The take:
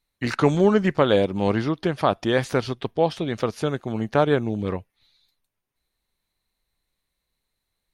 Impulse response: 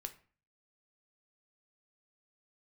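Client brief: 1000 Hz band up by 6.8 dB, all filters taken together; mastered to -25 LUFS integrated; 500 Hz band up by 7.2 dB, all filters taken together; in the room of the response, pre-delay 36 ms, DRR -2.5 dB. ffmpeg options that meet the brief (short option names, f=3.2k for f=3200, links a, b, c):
-filter_complex "[0:a]equalizer=f=500:t=o:g=7,equalizer=f=1k:t=o:g=6.5,asplit=2[a][b];[1:a]atrim=start_sample=2205,adelay=36[c];[b][c]afir=irnorm=-1:irlink=0,volume=6dB[d];[a][d]amix=inputs=2:normalize=0,volume=-13dB"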